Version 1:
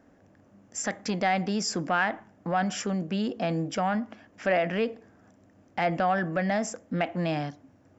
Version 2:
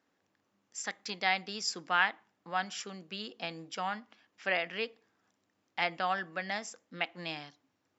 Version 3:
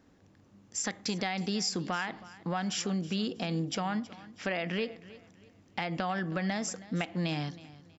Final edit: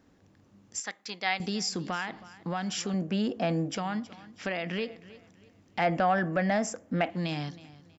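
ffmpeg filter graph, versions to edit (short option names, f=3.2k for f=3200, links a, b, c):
-filter_complex "[0:a]asplit=2[a][b];[2:a]asplit=4[c][d][e][f];[c]atrim=end=0.802[g];[1:a]atrim=start=0.798:end=1.402[h];[d]atrim=start=1.398:end=2.942[i];[a]atrim=start=2.938:end=3.752[j];[e]atrim=start=3.748:end=5.792[k];[b]atrim=start=5.788:end=7.102[l];[f]atrim=start=7.098[m];[g][h]acrossfade=d=0.004:c1=hsin:c2=hsin[n];[n][i]acrossfade=d=0.004:c1=hsin:c2=hsin[o];[o][j]acrossfade=d=0.004:c1=hsin:c2=hsin[p];[p][k]acrossfade=d=0.004:c1=hsin:c2=hsin[q];[q][l]acrossfade=d=0.004:c1=hsin:c2=hsin[r];[r][m]acrossfade=d=0.004:c1=hsin:c2=hsin"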